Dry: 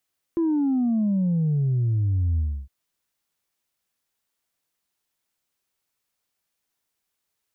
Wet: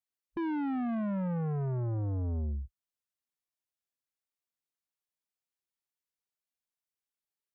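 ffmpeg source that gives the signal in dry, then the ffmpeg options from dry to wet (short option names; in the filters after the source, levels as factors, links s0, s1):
-f lavfi -i "aevalsrc='0.106*clip((2.31-t)/0.3,0,1)*tanh(1.06*sin(2*PI*340*2.31/log(65/340)*(exp(log(65/340)*t/2.31)-1)))/tanh(1.06)':d=2.31:s=44100"
-af "afwtdn=0.0224,asoftclip=type=tanh:threshold=0.0282"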